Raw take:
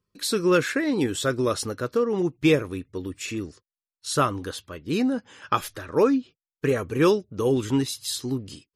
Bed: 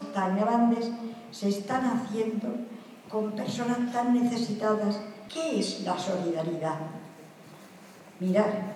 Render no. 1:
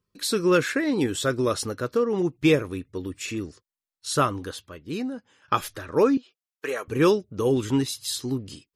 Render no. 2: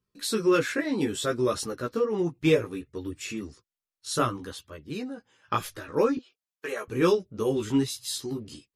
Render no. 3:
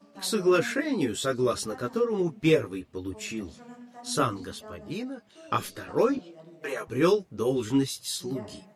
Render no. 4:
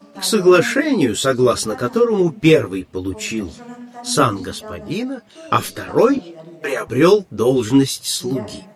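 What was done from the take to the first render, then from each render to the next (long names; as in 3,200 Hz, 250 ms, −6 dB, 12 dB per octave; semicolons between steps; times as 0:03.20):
0:04.24–0:05.48: fade out, to −16 dB; 0:06.17–0:06.88: high-pass filter 590 Hz
multi-voice chorus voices 2, 0.63 Hz, delay 16 ms, depth 2.8 ms
mix in bed −18.5 dB
level +11 dB; brickwall limiter −2 dBFS, peak gain reduction 2.5 dB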